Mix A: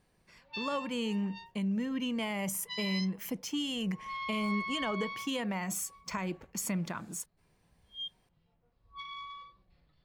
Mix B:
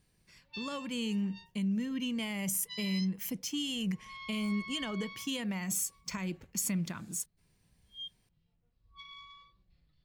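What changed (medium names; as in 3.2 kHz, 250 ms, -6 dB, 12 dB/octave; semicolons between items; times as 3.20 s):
speech +4.0 dB; master: add peaking EQ 780 Hz -12 dB 2.8 oct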